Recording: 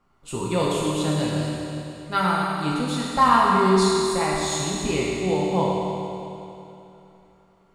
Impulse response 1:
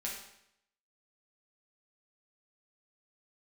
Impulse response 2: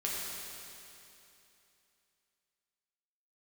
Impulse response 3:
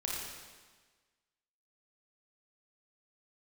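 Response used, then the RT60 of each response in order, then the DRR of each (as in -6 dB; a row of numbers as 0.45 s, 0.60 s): 2; 0.75 s, 2.9 s, 1.4 s; -4.5 dB, -5.5 dB, -4.0 dB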